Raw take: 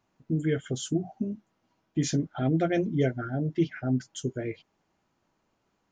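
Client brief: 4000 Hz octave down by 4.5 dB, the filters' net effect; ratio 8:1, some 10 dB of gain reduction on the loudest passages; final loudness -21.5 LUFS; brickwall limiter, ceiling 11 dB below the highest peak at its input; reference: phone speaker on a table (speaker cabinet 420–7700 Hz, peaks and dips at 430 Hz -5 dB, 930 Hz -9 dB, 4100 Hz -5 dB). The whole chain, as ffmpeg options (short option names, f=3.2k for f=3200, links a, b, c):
-af "equalizer=f=4k:t=o:g=-4.5,acompressor=threshold=-31dB:ratio=8,alimiter=level_in=9.5dB:limit=-24dB:level=0:latency=1,volume=-9.5dB,highpass=f=420:w=0.5412,highpass=f=420:w=1.3066,equalizer=f=430:t=q:w=4:g=-5,equalizer=f=930:t=q:w=4:g=-9,equalizer=f=4.1k:t=q:w=4:g=-5,lowpass=f=7.7k:w=0.5412,lowpass=f=7.7k:w=1.3066,volume=28.5dB"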